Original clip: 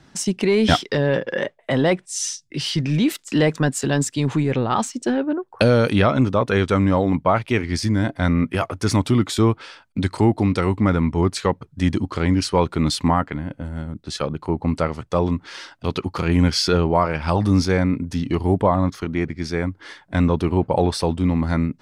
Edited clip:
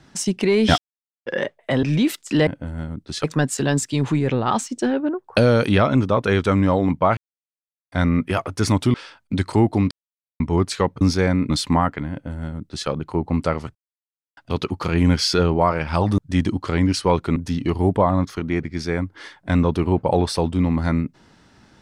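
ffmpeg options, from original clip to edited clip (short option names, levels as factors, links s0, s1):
-filter_complex "[0:a]asplit=17[s0][s1][s2][s3][s4][s5][s6][s7][s8][s9][s10][s11][s12][s13][s14][s15][s16];[s0]atrim=end=0.78,asetpts=PTS-STARTPTS,afade=t=out:st=0.776:d=0.004:c=hsin[s17];[s1]atrim=start=0.78:end=1.26,asetpts=PTS-STARTPTS,volume=0[s18];[s2]atrim=start=1.26:end=1.832,asetpts=PTS-STARTPTS,afade=t=in:d=0.004:c=hsin[s19];[s3]atrim=start=2.838:end=3.482[s20];[s4]atrim=start=13.448:end=14.222[s21];[s5]atrim=start=3.478:end=7.41,asetpts=PTS-STARTPTS,afade=t=out:st=3.928:d=0.004:c=hsin[s22];[s6]atrim=start=7.41:end=8.16,asetpts=PTS-STARTPTS,volume=0[s23];[s7]atrim=start=8.16:end=9.182,asetpts=PTS-STARTPTS,afade=t=in:d=0.004:c=hsin[s24];[s8]atrim=start=9.588:end=10.56,asetpts=PTS-STARTPTS,afade=t=out:st=0.968:d=0.004:c=hsin[s25];[s9]atrim=start=10.56:end=11.05,asetpts=PTS-STARTPTS,volume=0[s26];[s10]atrim=start=11.05:end=11.662,asetpts=PTS-STARTPTS,afade=t=in:d=0.004:c=hsin[s27];[s11]atrim=start=17.518:end=18.012[s28];[s12]atrim=start=12.838:end=15.09,asetpts=PTS-STARTPTS,afade=t=out:st=2.248:d=0.004:c=hsin[s29];[s13]atrim=start=15.09:end=15.71,asetpts=PTS-STARTPTS,volume=0[s30];[s14]atrim=start=15.71:end=17.522,asetpts=PTS-STARTPTS,afade=t=in:d=0.004:c=hsin[s31];[s15]atrim=start=11.658:end=12.842[s32];[s16]atrim=start=18.008[s33];[s17][s18][s19]concat=n=3:v=0:a=1[s34];[s34][s20]acrossfade=d=0.004:c1=hsin:c2=hsin[s35];[s35][s21]acrossfade=d=0.004:c1=hsin:c2=hsin[s36];[s22][s23][s24]concat=n=3:v=0:a=1[s37];[s36][s37]acrossfade=d=0.004:c1=hsin:c2=hsin[s38];[s25][s26][s27]concat=n=3:v=0:a=1[s39];[s38][s39]acrossfade=d=0.004:c1=hsin:c2=hsin[s40];[s40][s28]acrossfade=d=0.004:c1=hsin:c2=hsin[s41];[s29][s30][s31]concat=n=3:v=0:a=1[s42];[s41][s42]acrossfade=d=0.004:c1=hsin:c2=hsin[s43];[s43][s32]acrossfade=d=0.004:c1=hsin:c2=hsin[s44];[s44][s33]acrossfade=d=0.004:c1=hsin:c2=hsin"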